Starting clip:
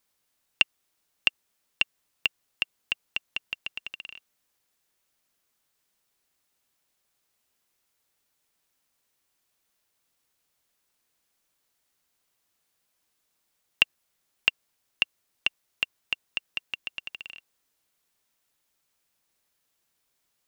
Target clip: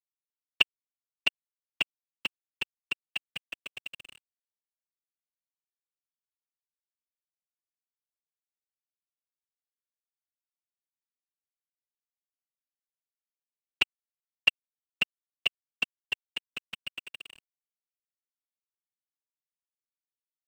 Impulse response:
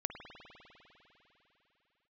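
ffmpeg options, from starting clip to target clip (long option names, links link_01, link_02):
-af "highpass=210,afftfilt=real='hypot(re,im)*cos(2*PI*random(0))':imag='hypot(re,im)*sin(2*PI*random(1))':win_size=512:overlap=0.75,aeval=exprs='sgn(val(0))*max(abs(val(0))-0.00335,0)':channel_layout=same,lowshelf=frequency=350:gain=12,volume=3.5dB"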